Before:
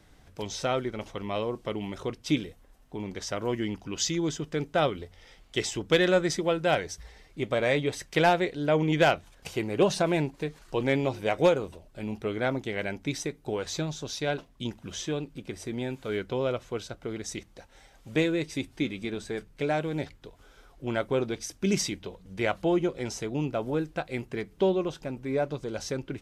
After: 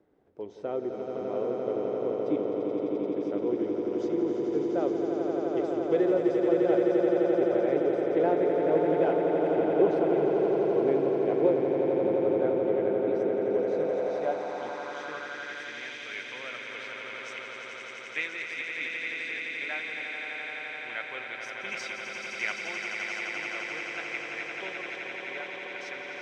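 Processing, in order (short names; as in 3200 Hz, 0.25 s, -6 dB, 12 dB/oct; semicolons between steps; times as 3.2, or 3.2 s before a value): bell 1400 Hz +3.5 dB 2.8 oct; on a send: swelling echo 86 ms, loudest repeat 8, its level -6.5 dB; on the sum: band-pass sweep 390 Hz -> 2200 Hz, 13.55–15.95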